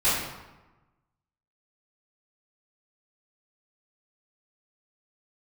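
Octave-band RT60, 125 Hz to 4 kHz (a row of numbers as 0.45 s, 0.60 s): 1.4 s, 1.2 s, 1.1 s, 1.1 s, 0.90 s, 0.70 s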